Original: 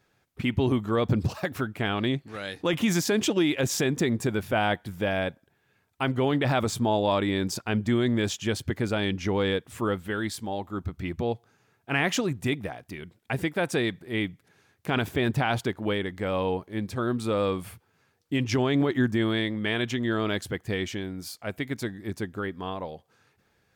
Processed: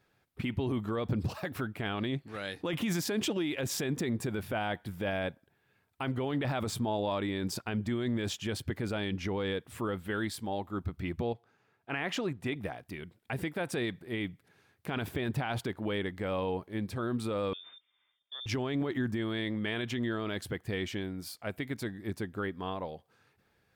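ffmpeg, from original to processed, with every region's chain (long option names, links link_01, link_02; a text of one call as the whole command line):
ffmpeg -i in.wav -filter_complex "[0:a]asettb=1/sr,asplit=3[link_01][link_02][link_03];[link_01]atrim=end=11.334[link_04];[link_02]atrim=start=11.33:end=12.56,asetpts=PTS-STARTPTS,afade=type=in:duration=0.004:curve=qsin,afade=type=out:start_time=1.226:duration=0.004:curve=qsin,lowpass=frequency=3600:poles=1,lowshelf=frequency=200:gain=-7.5[link_05];[link_03]atrim=start=12.556[link_06];[link_04][link_05]acrossfade=duration=0.004:curve1=hsin:curve2=qsin[link_07];[link_07][link_06]acrossfade=duration=0.004:curve1=qsin:curve2=hsin,asettb=1/sr,asplit=3[link_08][link_09][link_10];[link_08]atrim=end=17.534[link_11];[link_09]atrim=start=17.53:end=18.46,asetpts=PTS-STARTPTS,afade=type=in:duration=0.004:curve=qsin,afade=type=out:start_time=0.926:duration=0.004:curve=qsin,equalizer=frequency=860:width=0.39:gain=-8.5,acompressor=threshold=-44dB:ratio=2:attack=3.2:release=140:knee=1:detection=peak,lowpass=frequency=3100:width_type=q:width=0.5098,lowpass=frequency=3100:width_type=q:width=0.6013,lowpass=frequency=3100:width_type=q:width=0.9,lowpass=frequency=3100:width_type=q:width=2.563,afreqshift=-3700[link_12];[link_10]atrim=start=18.456[link_13];[link_11][link_12]acrossfade=duration=0.004:curve1=hsin:curve2=qsin[link_14];[link_14][link_13]acrossfade=duration=0.004:curve1=qsin:curve2=hsin,equalizer=frequency=6500:width=2.2:gain=-5,alimiter=limit=-20dB:level=0:latency=1:release=32,volume=-3dB" out.wav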